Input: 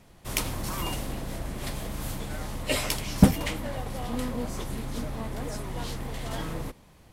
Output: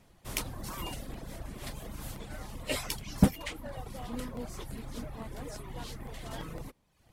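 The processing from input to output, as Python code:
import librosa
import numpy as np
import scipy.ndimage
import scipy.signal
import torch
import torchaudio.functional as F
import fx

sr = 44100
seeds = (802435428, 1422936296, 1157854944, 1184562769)

y = fx.dereverb_blind(x, sr, rt60_s=0.83)
y = fx.buffer_crackle(y, sr, first_s=0.97, period_s=0.17, block=64, kind='repeat')
y = y * 10.0 ** (-5.5 / 20.0)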